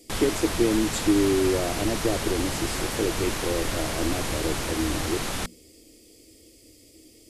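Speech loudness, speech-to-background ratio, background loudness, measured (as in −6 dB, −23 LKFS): −27.5 LKFS, 2.0 dB, −29.5 LKFS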